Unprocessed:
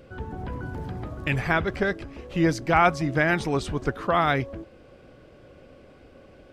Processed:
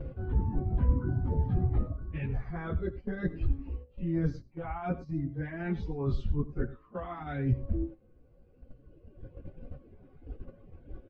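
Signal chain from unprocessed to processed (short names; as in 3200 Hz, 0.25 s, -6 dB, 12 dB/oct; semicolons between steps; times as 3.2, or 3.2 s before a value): reverb removal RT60 1.6 s; running mean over 5 samples; reverse; compressor 20:1, threshold -36 dBFS, peak gain reduction 22 dB; reverse; tilt -4 dB/oct; on a send: early reflections 48 ms -17.5 dB, 61 ms -18 dB; on the sum: plain phase-vocoder stretch 1.7×; gate -42 dBFS, range -9 dB; notch 610 Hz, Q 12; gain +2.5 dB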